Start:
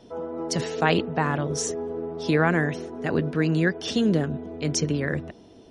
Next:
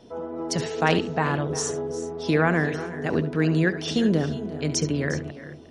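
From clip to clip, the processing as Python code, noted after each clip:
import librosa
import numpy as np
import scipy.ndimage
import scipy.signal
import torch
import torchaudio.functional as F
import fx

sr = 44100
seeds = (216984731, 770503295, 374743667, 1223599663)

y = fx.echo_multitap(x, sr, ms=(70, 355, 388), db=(-14.0, -15.5, -18.0))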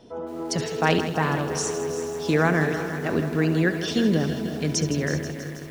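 y = fx.echo_crushed(x, sr, ms=161, feedback_pct=80, bits=7, wet_db=-11)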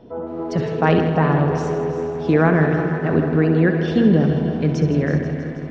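y = fx.spacing_loss(x, sr, db_at_10k=36)
y = fx.echo_filtered(y, sr, ms=62, feedback_pct=85, hz=4700.0, wet_db=-11)
y = y * 10.0 ** (7.0 / 20.0)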